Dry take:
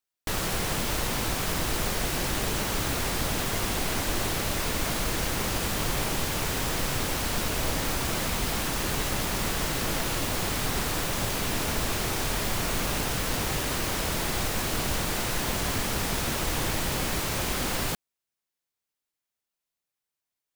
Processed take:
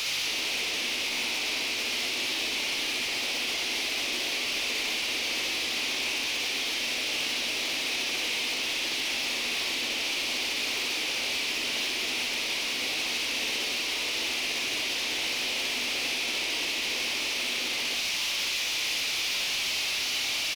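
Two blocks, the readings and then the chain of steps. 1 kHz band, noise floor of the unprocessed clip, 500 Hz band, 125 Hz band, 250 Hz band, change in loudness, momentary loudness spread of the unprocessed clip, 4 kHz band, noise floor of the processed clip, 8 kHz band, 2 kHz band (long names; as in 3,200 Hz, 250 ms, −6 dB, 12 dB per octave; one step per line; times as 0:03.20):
−8.0 dB, below −85 dBFS, −7.0 dB, −23.5 dB, −9.5 dB, +0.5 dB, 0 LU, +6.5 dB, −31 dBFS, −2.0 dB, +4.0 dB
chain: linear delta modulator 32 kbit/s, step −27.5 dBFS
Butterworth high-pass 230 Hz 96 dB per octave
high shelf with overshoot 1,900 Hz +8 dB, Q 3
brickwall limiter −20 dBFS, peak gain reduction 10 dB
gain into a clipping stage and back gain 28.5 dB
double-tracking delay 16 ms −13 dB
on a send: flutter between parallel walls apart 10.6 metres, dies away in 0.62 s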